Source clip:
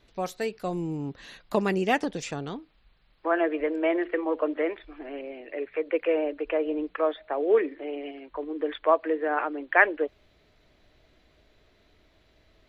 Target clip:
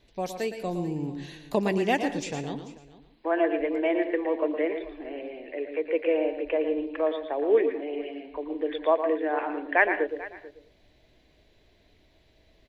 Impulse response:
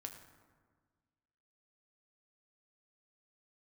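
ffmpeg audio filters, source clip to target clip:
-filter_complex "[0:a]equalizer=frequency=1300:width_type=o:width=0.43:gain=-11,aecho=1:1:440:0.119,asplit=2[link_01][link_02];[1:a]atrim=start_sample=2205,afade=type=out:start_time=0.17:duration=0.01,atrim=end_sample=7938,adelay=114[link_03];[link_02][link_03]afir=irnorm=-1:irlink=0,volume=-3dB[link_04];[link_01][link_04]amix=inputs=2:normalize=0"

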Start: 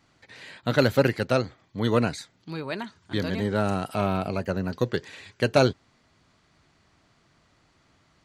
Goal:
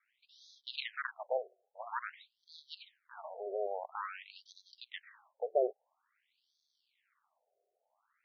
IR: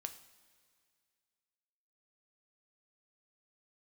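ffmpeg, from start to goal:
-af "aeval=exprs='max(val(0),0)':channel_layout=same,afftfilt=real='re*between(b*sr/1024,520*pow(4700/520,0.5+0.5*sin(2*PI*0.49*pts/sr))/1.41,520*pow(4700/520,0.5+0.5*sin(2*PI*0.49*pts/sr))*1.41)':imag='im*between(b*sr/1024,520*pow(4700/520,0.5+0.5*sin(2*PI*0.49*pts/sr))/1.41,520*pow(4700/520,0.5+0.5*sin(2*PI*0.49*pts/sr))*1.41)':win_size=1024:overlap=0.75,volume=-4dB"

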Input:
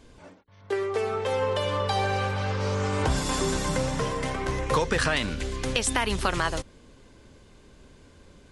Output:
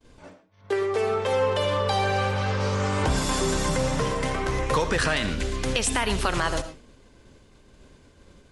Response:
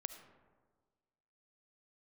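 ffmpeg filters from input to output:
-filter_complex "[0:a]agate=range=-33dB:threshold=-47dB:ratio=3:detection=peak,asplit=2[link_01][link_02];[link_02]alimiter=limit=-19dB:level=0:latency=1,volume=0.5dB[link_03];[link_01][link_03]amix=inputs=2:normalize=0[link_04];[1:a]atrim=start_sample=2205,atrim=end_sample=6615[link_05];[link_04][link_05]afir=irnorm=-1:irlink=0"

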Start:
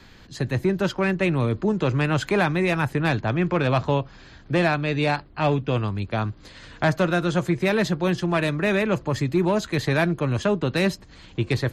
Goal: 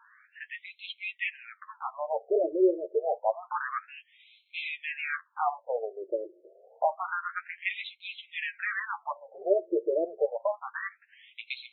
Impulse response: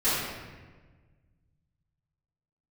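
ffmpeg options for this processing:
-af "flanger=delay=8.7:depth=2.5:regen=21:speed=0.87:shape=sinusoidal,tiltshelf=frequency=970:gain=3.5,afftfilt=real='re*between(b*sr/1024,450*pow(3000/450,0.5+0.5*sin(2*PI*0.28*pts/sr))/1.41,450*pow(3000/450,0.5+0.5*sin(2*PI*0.28*pts/sr))*1.41)':imag='im*between(b*sr/1024,450*pow(3000/450,0.5+0.5*sin(2*PI*0.28*pts/sr))/1.41,450*pow(3000/450,0.5+0.5*sin(2*PI*0.28*pts/sr))*1.41)':win_size=1024:overlap=0.75,volume=3dB"

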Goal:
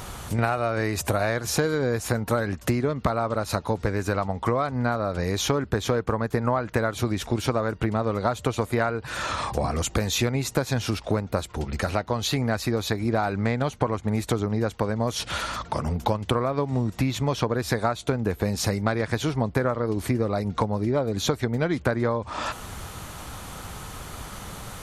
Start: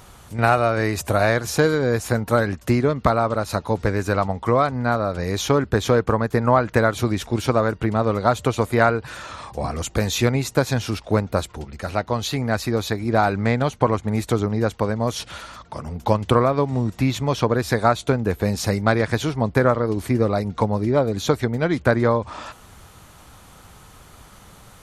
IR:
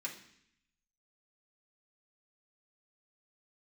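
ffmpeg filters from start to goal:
-af "acompressor=threshold=-32dB:ratio=4,volume=8.5dB"

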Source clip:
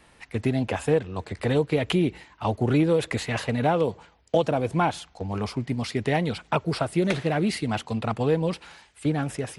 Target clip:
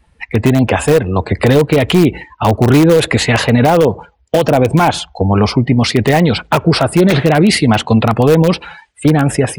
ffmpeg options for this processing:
ffmpeg -i in.wav -filter_complex "[0:a]afftdn=noise_reduction=24:noise_floor=-45,asplit=2[link_01][link_02];[link_02]aeval=exprs='(mod(5.96*val(0)+1,2)-1)/5.96':channel_layout=same,volume=-11.5dB[link_03];[link_01][link_03]amix=inputs=2:normalize=0,alimiter=level_in=17.5dB:limit=-1dB:release=50:level=0:latency=1,volume=-1dB" out.wav

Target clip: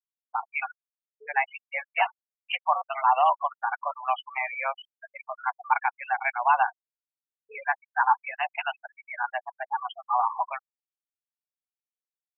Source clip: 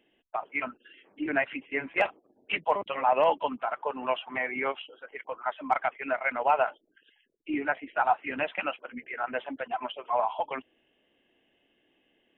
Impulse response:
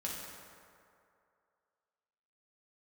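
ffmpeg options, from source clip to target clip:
-af "highpass=frequency=550:width_type=q:width=0.5412,highpass=frequency=550:width_type=q:width=1.307,lowpass=frequency=3400:width_type=q:width=0.5176,lowpass=frequency=3400:width_type=q:width=0.7071,lowpass=frequency=3400:width_type=q:width=1.932,afreqshift=130,highshelf=frequency=2800:gain=-7.5,afftfilt=real='re*gte(hypot(re,im),0.0282)':imag='im*gte(hypot(re,im),0.0282)':win_size=1024:overlap=0.75,volume=4dB"

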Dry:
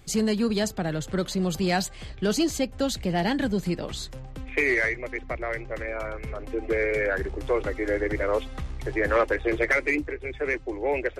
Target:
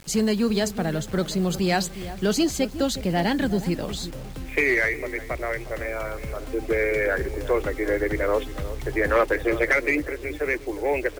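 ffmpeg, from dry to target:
ffmpeg -i in.wav -filter_complex "[0:a]asplit=2[link_01][link_02];[link_02]adelay=361,lowpass=frequency=850:poles=1,volume=-12dB,asplit=2[link_03][link_04];[link_04]adelay=361,lowpass=frequency=850:poles=1,volume=0.38,asplit=2[link_05][link_06];[link_06]adelay=361,lowpass=frequency=850:poles=1,volume=0.38,asplit=2[link_07][link_08];[link_08]adelay=361,lowpass=frequency=850:poles=1,volume=0.38[link_09];[link_01][link_03][link_05][link_07][link_09]amix=inputs=5:normalize=0,acrusher=bits=7:mix=0:aa=0.000001,volume=2dB" out.wav

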